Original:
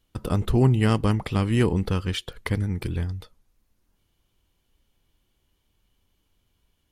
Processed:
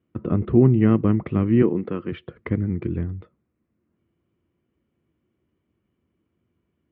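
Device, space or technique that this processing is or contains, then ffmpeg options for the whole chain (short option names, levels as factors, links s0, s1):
bass cabinet: -filter_complex "[0:a]highshelf=f=6800:g=-5.5,asettb=1/sr,asplit=3[s0][s1][s2];[s0]atrim=end=1.624[s3];[s1]atrim=start=1.62:end=2.12,asetpts=PTS-STARTPTS,afade=t=in:d=0.004:c=qsin,afade=t=out:st=0.496:d=0.004:c=qsin,highpass=240[s4];[s2]atrim=start=2.116[s5];[s3][s4]acrossfade=d=0.004:c1=hsin:c2=qsin[s6];[s6][s5]acrossfade=d=0.004:c1=qsin:c2=hsin,highpass=f=77:w=0.5412,highpass=f=77:w=1.3066,equalizer=f=160:t=q:w=4:g=5,equalizer=f=230:t=q:w=4:g=6,equalizer=f=340:t=q:w=4:g=9,equalizer=f=860:t=q:w=4:g=-9,equalizer=f=1600:t=q:w=4:g=-5,lowpass=f=2100:w=0.5412,lowpass=f=2100:w=1.3066"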